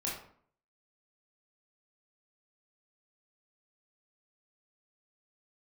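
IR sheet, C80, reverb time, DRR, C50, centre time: 8.0 dB, 0.55 s, -5.0 dB, 3.5 dB, 42 ms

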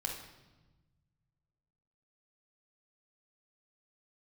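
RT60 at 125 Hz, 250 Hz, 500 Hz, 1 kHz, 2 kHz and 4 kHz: 2.5 s, 1.8 s, 1.2 s, 1.1 s, 1.0 s, 0.95 s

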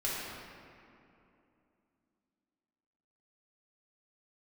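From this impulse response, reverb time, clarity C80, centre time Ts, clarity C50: 2.8 s, -0.5 dB, 144 ms, -2.5 dB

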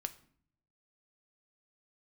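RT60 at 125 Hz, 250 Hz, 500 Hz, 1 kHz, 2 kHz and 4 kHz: 1.0 s, 0.85 s, 0.60 s, 0.55 s, 0.50 s, 0.40 s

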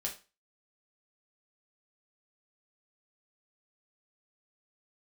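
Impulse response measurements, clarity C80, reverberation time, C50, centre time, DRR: 17.0 dB, 0.30 s, 10.5 dB, 17 ms, -1.0 dB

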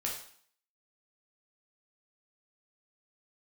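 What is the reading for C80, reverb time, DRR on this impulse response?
9.0 dB, 0.55 s, -2.5 dB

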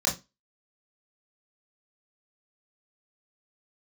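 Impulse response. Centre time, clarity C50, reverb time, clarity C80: 24 ms, 12.0 dB, 0.25 s, 20.5 dB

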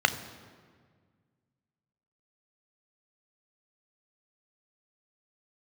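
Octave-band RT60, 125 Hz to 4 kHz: 2.5 s, 2.2 s, 1.8 s, 1.6 s, 1.5 s, 1.2 s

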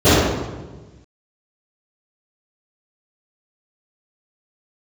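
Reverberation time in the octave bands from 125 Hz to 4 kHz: 1.7 s, 1.5 s, 1.4 s, 1.1 s, 0.95 s, 0.90 s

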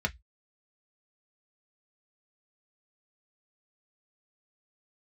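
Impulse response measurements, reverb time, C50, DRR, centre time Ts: 0.10 s, 26.5 dB, 3.0 dB, 4 ms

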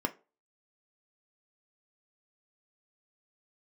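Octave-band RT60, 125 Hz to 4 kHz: 0.25 s, 0.30 s, 0.35 s, 0.30 s, 0.25 s, 0.20 s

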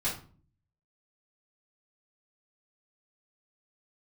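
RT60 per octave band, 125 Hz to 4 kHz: 0.80 s, 0.70 s, 0.45 s, 0.40 s, 0.35 s, 0.30 s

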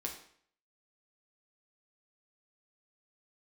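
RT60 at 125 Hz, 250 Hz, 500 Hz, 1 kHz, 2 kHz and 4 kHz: 0.60 s, 0.60 s, 0.60 s, 0.60 s, 0.60 s, 0.55 s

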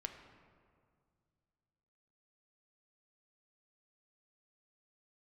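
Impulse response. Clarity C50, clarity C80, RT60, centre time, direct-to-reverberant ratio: 7.5 dB, 8.5 dB, 2.1 s, 30 ms, 5.0 dB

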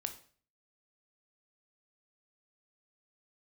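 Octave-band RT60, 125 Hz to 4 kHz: 0.60 s, 0.50 s, 0.45 s, 0.40 s, 0.45 s, 0.40 s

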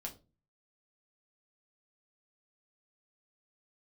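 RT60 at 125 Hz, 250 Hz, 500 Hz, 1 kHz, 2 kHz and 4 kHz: 0.60 s, 0.45 s, 0.35 s, 0.25 s, 0.20 s, 0.25 s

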